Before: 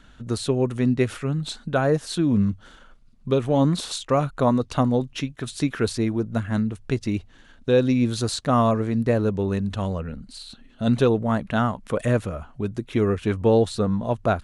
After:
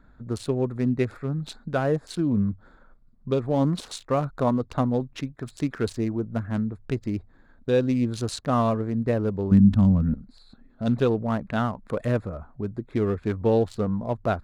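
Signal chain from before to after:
adaptive Wiener filter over 15 samples
0:09.51–0:10.14: low shelf with overshoot 320 Hz +9.5 dB, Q 3
level −3 dB

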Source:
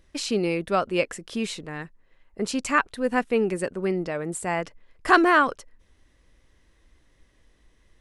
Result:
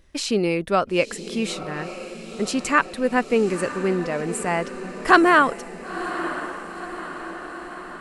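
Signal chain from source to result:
feedback delay with all-pass diffusion 975 ms, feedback 61%, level −12 dB
level +3 dB

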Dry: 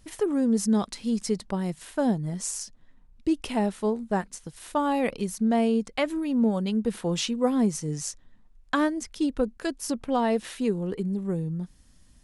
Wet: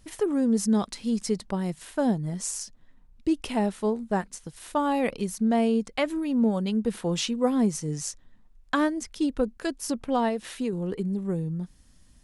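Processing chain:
0:10.28–0:10.73: downward compressor, threshold −25 dBFS, peak gain reduction 5.5 dB

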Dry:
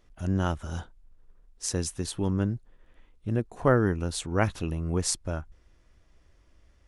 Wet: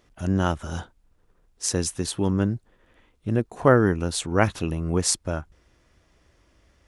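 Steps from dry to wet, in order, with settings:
high-pass filter 100 Hz 6 dB per octave
level +5.5 dB

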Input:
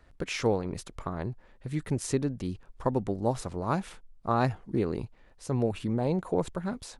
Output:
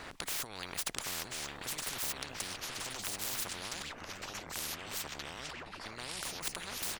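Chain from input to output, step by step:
running median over 3 samples
parametric band 560 Hz −4 dB 0.86 octaves
compressor whose output falls as the input rises −34 dBFS, ratio −1
single-tap delay 1,038 ms −15.5 dB
0:03.82–0:05.86: LFO wah 4.4 Hz 220–3,000 Hz, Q 7.6
delay with pitch and tempo change per echo 691 ms, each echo −4 semitones, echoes 3, each echo −6 dB
every bin compressed towards the loudest bin 10 to 1
level +6.5 dB

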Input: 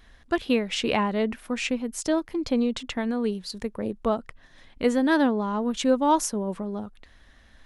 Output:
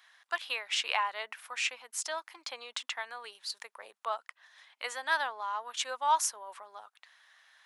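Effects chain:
high-pass filter 870 Hz 24 dB per octave
level −1.5 dB

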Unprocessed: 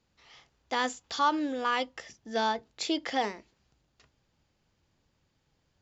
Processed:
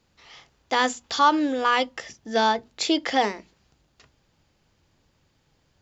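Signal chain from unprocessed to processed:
mains-hum notches 60/120/180/240 Hz
level +7.5 dB

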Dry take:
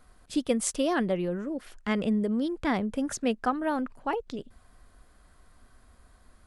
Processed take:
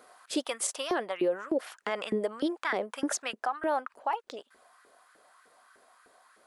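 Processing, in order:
auto-filter high-pass saw up 3.3 Hz 370–1,600 Hz
speech leveller within 4 dB 0.5 s
brickwall limiter −21 dBFS, peak gain reduction 10 dB
level +1.5 dB

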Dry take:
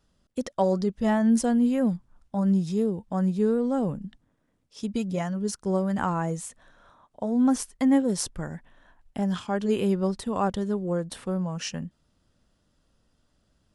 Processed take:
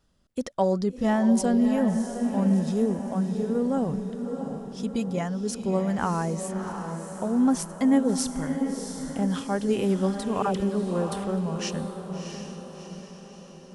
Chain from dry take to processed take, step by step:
0:02.99–0:03.55: downward compressor, threshold −27 dBFS, peak gain reduction 8.5 dB
0:10.42–0:11.13: all-pass dispersion lows, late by 59 ms, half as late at 980 Hz
on a send: feedback delay with all-pass diffusion 679 ms, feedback 52%, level −7 dB

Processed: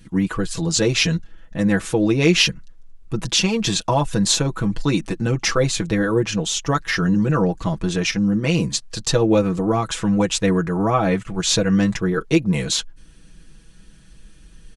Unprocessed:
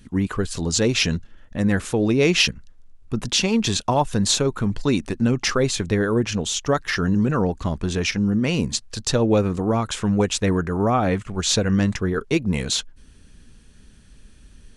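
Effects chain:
comb filter 6.1 ms, depth 77%

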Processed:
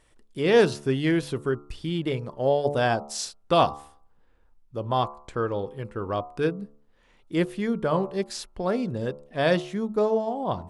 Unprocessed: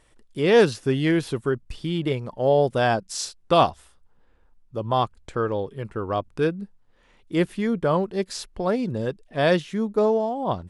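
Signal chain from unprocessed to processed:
hum removal 72.25 Hz, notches 19
level −2 dB

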